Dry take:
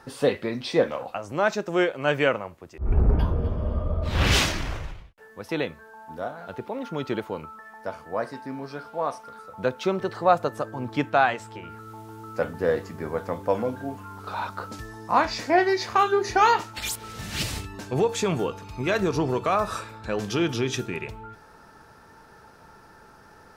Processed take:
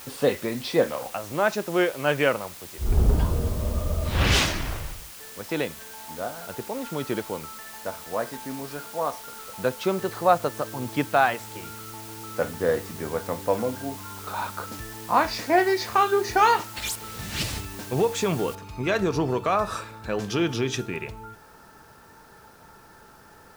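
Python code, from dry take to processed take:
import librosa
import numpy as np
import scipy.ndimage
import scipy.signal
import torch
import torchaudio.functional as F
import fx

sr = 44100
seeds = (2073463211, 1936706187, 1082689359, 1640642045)

y = fx.noise_floor_step(x, sr, seeds[0], at_s=18.55, before_db=-43, after_db=-61, tilt_db=0.0)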